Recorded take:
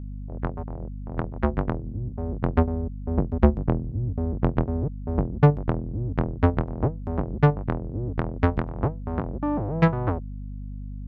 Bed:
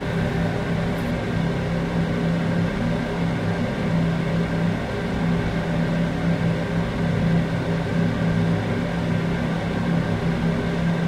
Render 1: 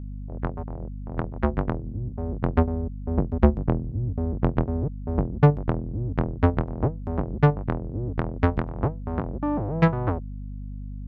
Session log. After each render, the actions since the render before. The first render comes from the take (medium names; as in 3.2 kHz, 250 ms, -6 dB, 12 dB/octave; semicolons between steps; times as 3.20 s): no audible change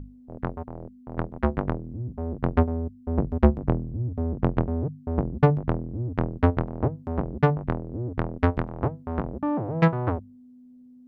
hum notches 50/100/150/200 Hz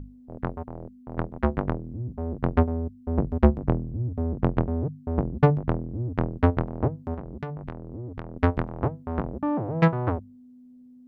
7.14–8.36 s: compression 3:1, threshold -33 dBFS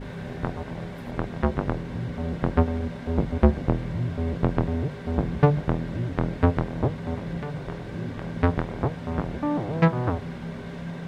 add bed -13 dB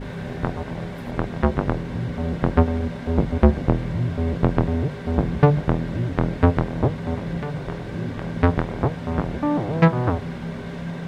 trim +4 dB; peak limiter -1 dBFS, peak gain reduction 1.5 dB